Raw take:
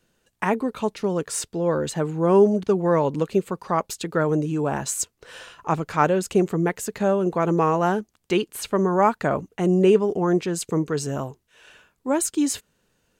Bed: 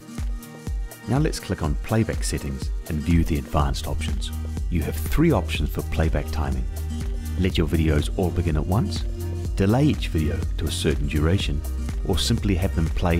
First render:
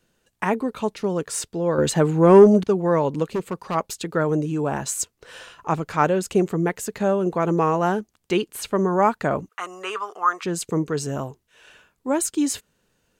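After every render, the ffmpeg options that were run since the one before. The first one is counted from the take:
-filter_complex "[0:a]asettb=1/sr,asplit=3[s0][s1][s2];[s0]atrim=end=1.784[s3];[s1]atrim=start=1.78:end=2.64,asetpts=PTS-STARTPTS,afade=t=in:d=0.004:c=qsin,afade=t=out:st=0.856:d=0.004:c=qsin,acontrast=66[s4];[s2]atrim=start=2.636[s5];[s3][s4]acrossfade=d=0.004:c1=hsin:c2=qsin[s6];[s6][s5]acrossfade=d=0.004:c1=qsin:c2=hsin,asplit=3[s7][s8][s9];[s7]afade=t=out:st=3.34:d=0.02[s10];[s8]asoftclip=type=hard:threshold=0.0944,afade=t=in:st=3.34:d=0.02,afade=t=out:st=3.74:d=0.02[s11];[s9]afade=t=in:st=3.74:d=0.02[s12];[s10][s11][s12]amix=inputs=3:normalize=0,asettb=1/sr,asplit=3[s13][s14][s15];[s13]atrim=end=9.494[s16];[s14]atrim=start=9.49:end=10.44,asetpts=PTS-STARTPTS,afade=t=in:d=0.004:c=qsin,afade=t=out:st=0.946:d=0.004:c=qsin,highpass=f=1200:t=q:w=7.9[s17];[s15]atrim=start=10.436[s18];[s16][s17]acrossfade=d=0.004:c1=hsin:c2=qsin[s19];[s19][s18]acrossfade=d=0.004:c1=qsin:c2=hsin"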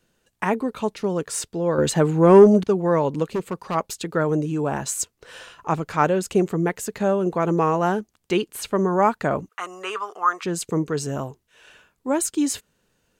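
-af anull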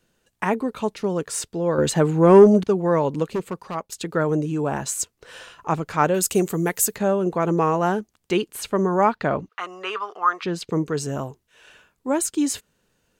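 -filter_complex "[0:a]asettb=1/sr,asplit=3[s0][s1][s2];[s0]atrim=end=6.144[s3];[s1]atrim=start=6.14:end=6.96,asetpts=PTS-STARTPTS,afade=t=in:d=0.004:c=qsin,afade=t=out:st=0.816:d=0.004:c=qsin,aemphasis=mode=production:type=75fm[s4];[s2]atrim=start=6.956[s5];[s3][s4]acrossfade=d=0.004:c1=hsin:c2=qsin[s6];[s6][s5]acrossfade=d=0.004:c1=qsin:c2=hsin,asettb=1/sr,asplit=3[s7][s8][s9];[s7]atrim=end=9.054[s10];[s8]atrim=start=9.05:end=10.72,asetpts=PTS-STARTPTS,afade=t=in:d=0.004:c=qsin,afade=t=out:st=1.666:d=0.004:c=qsin,highshelf=f=5900:t=q:w=1.5:g=-10[s11];[s9]atrim=start=10.716[s12];[s10][s11]acrossfade=d=0.004:c1=hsin:c2=qsin[s13];[s13][s12]acrossfade=d=0.004:c1=qsin:c2=hsin,asplit=2[s14][s15];[s14]atrim=end=3.92,asetpts=PTS-STARTPTS,afade=t=out:st=3.3:d=0.62:c=qsin:silence=0.237137[s16];[s15]atrim=start=3.92,asetpts=PTS-STARTPTS,afade=t=in:d=0.004:c=hsin:silence=0.237137[s17];[s16][s17]concat=n=2:v=0:a=1"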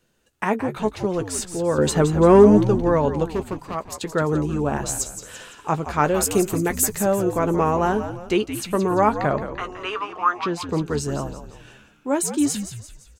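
-filter_complex "[0:a]asplit=2[s0][s1];[s1]adelay=14,volume=0.266[s2];[s0][s2]amix=inputs=2:normalize=0,asplit=2[s3][s4];[s4]asplit=5[s5][s6][s7][s8][s9];[s5]adelay=171,afreqshift=-87,volume=0.316[s10];[s6]adelay=342,afreqshift=-174,volume=0.14[s11];[s7]adelay=513,afreqshift=-261,volume=0.061[s12];[s8]adelay=684,afreqshift=-348,volume=0.0269[s13];[s9]adelay=855,afreqshift=-435,volume=0.0119[s14];[s10][s11][s12][s13][s14]amix=inputs=5:normalize=0[s15];[s3][s15]amix=inputs=2:normalize=0"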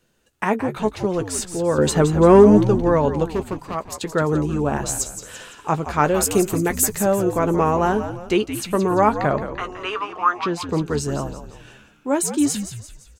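-af "volume=1.19,alimiter=limit=0.794:level=0:latency=1"

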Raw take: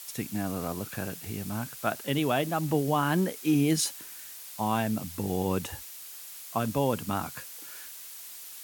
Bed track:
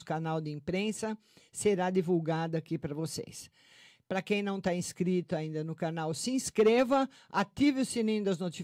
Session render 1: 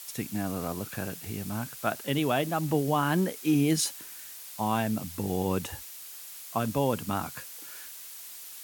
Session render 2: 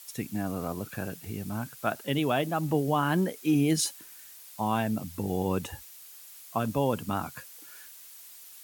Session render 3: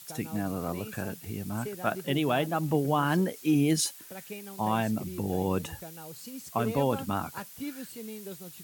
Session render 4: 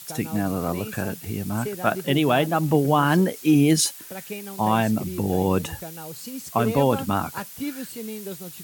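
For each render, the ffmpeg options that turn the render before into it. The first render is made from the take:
-af anull
-af "afftdn=nr=6:nf=-44"
-filter_complex "[1:a]volume=0.266[s0];[0:a][s0]amix=inputs=2:normalize=0"
-af "volume=2.24"

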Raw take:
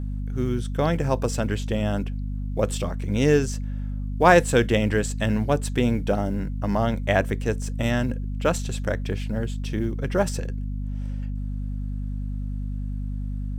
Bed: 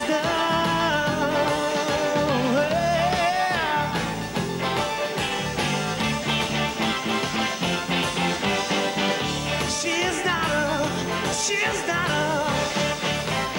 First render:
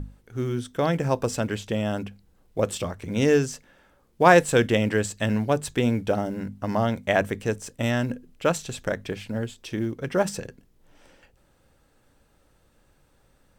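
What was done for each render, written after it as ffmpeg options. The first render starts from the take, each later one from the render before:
-af "bandreject=f=50:t=h:w=6,bandreject=f=100:t=h:w=6,bandreject=f=150:t=h:w=6,bandreject=f=200:t=h:w=6,bandreject=f=250:t=h:w=6"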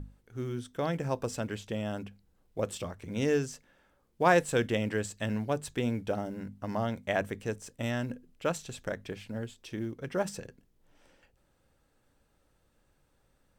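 -af "volume=0.398"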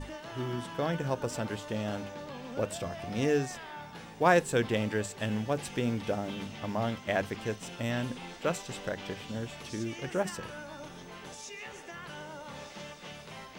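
-filter_complex "[1:a]volume=0.0944[s0];[0:a][s0]amix=inputs=2:normalize=0"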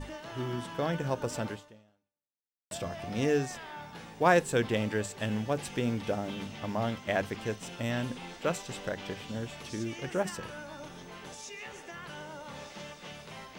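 -filter_complex "[0:a]asplit=2[s0][s1];[s0]atrim=end=2.71,asetpts=PTS-STARTPTS,afade=t=out:st=1.49:d=1.22:c=exp[s2];[s1]atrim=start=2.71,asetpts=PTS-STARTPTS,afade=t=in:d=0.004:c=hsin[s3];[s2][s3]concat=n=2:v=0:a=1"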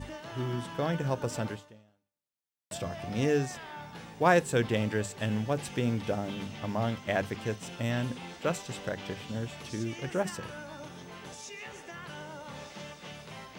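-af "highpass=40,equalizer=f=120:w=1.3:g=3.5"

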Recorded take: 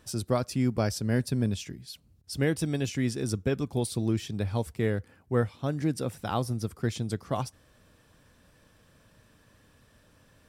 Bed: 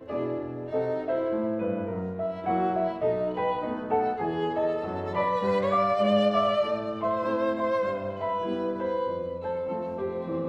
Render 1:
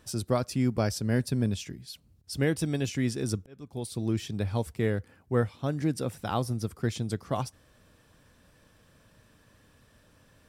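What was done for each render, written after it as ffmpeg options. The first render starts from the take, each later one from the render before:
-filter_complex "[0:a]asplit=2[s0][s1];[s0]atrim=end=3.46,asetpts=PTS-STARTPTS,afade=t=out:st=3.456:d=0.004:c=hsin[s2];[s1]atrim=start=3.46,asetpts=PTS-STARTPTS,afade=t=in:d=0.75[s3];[s2][s3]concat=n=2:v=0:a=1"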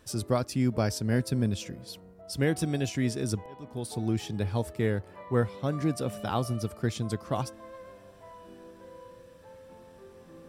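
-filter_complex "[1:a]volume=0.1[s0];[0:a][s0]amix=inputs=2:normalize=0"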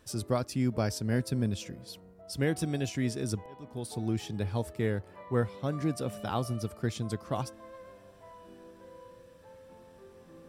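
-af "volume=0.75"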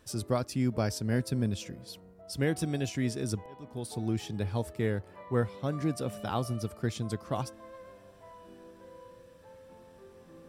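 -af anull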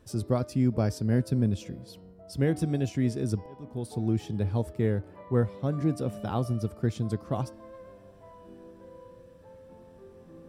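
-af "tiltshelf=f=810:g=5,bandreject=f=301.9:t=h:w=4,bandreject=f=603.8:t=h:w=4,bandreject=f=905.7:t=h:w=4,bandreject=f=1207.6:t=h:w=4,bandreject=f=1509.5:t=h:w=4,bandreject=f=1811.4:t=h:w=4,bandreject=f=2113.3:t=h:w=4,bandreject=f=2415.2:t=h:w=4,bandreject=f=2717.1:t=h:w=4,bandreject=f=3019:t=h:w=4,bandreject=f=3320.9:t=h:w=4,bandreject=f=3622.8:t=h:w=4,bandreject=f=3924.7:t=h:w=4,bandreject=f=4226.6:t=h:w=4,bandreject=f=4528.5:t=h:w=4,bandreject=f=4830.4:t=h:w=4,bandreject=f=5132.3:t=h:w=4,bandreject=f=5434.2:t=h:w=4"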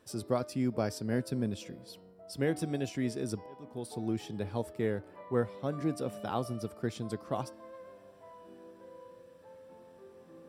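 -af "highpass=f=400:p=1,bandreject=f=6500:w=12"

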